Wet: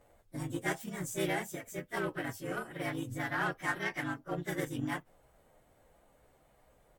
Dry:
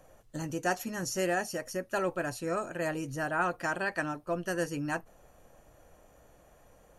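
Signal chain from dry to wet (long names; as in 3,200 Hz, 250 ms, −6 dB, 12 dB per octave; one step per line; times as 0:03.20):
partials spread apart or drawn together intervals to 109%
dynamic equaliser 630 Hz, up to −8 dB, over −49 dBFS, Q 2.3
pitch-shifted copies added −3 semitones −4 dB
in parallel at −6 dB: soft clipping −32.5 dBFS, distortion −11 dB
on the sum: harmonic generator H 7 −24 dB, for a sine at −17.5 dBFS
level −2 dB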